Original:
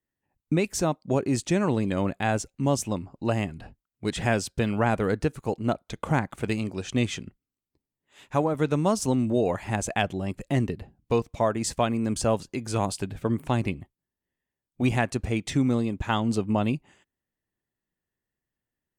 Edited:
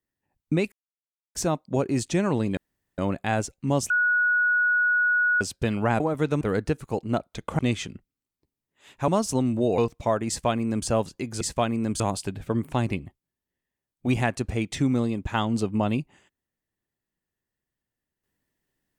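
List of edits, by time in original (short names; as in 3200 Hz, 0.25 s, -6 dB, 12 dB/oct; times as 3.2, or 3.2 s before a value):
0.72 insert silence 0.63 s
1.94 insert room tone 0.41 s
2.86–4.37 bleep 1460 Hz -18.5 dBFS
6.14–6.91 cut
8.4–8.81 move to 4.96
9.51–11.12 cut
11.62–12.21 copy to 12.75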